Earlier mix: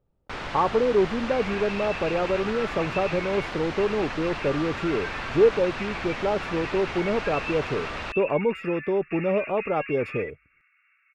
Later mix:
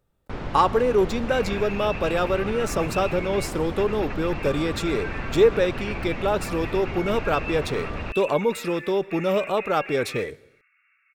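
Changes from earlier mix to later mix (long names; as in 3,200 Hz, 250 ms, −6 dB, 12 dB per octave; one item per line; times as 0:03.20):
speech: remove moving average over 22 samples
first sound: add tilt shelving filter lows +8.5 dB, about 660 Hz
reverb: on, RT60 0.95 s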